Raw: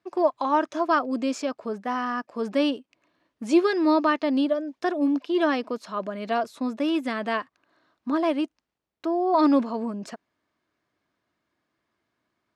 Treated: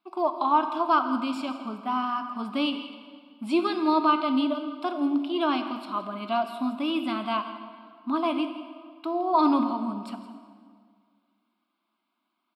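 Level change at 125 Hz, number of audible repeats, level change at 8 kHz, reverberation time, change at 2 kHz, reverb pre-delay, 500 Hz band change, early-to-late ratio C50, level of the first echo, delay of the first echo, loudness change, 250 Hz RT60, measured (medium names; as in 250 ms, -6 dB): no reading, 1, no reading, 2.0 s, -4.5 dB, 11 ms, -5.5 dB, 8.5 dB, -15.5 dB, 166 ms, -1.5 dB, 2.2 s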